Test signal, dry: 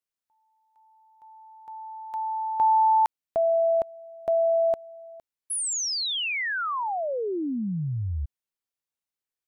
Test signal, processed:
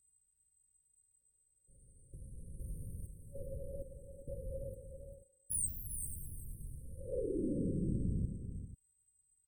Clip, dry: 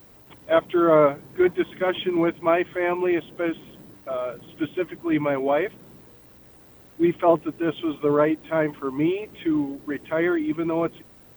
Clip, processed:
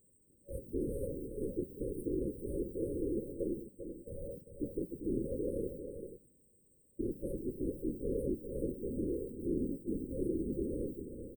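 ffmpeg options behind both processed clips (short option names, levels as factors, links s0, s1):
-filter_complex "[0:a]agate=range=0.2:threshold=0.00794:ratio=16:release=183:detection=peak,aeval=exprs='val(0)+0.00178*sin(2*PI*8000*n/s)':c=same,equalizer=f=7800:t=o:w=0.45:g=4,acontrast=41,aeval=exprs='(tanh(17.8*val(0)+0.55)-tanh(0.55))/17.8':c=same,afftfilt=real='hypot(re,im)*cos(2*PI*random(0))':imag='hypot(re,im)*sin(2*PI*random(1))':win_size=512:overlap=0.75,afftfilt=real='re*(1-between(b*sr/4096,570,8100))':imag='im*(1-between(b*sr/4096,570,8100))':win_size=4096:overlap=0.75,asplit=2[s0][s1];[s1]aecho=0:1:397|489:0.376|0.2[s2];[s0][s2]amix=inputs=2:normalize=0,volume=0.75"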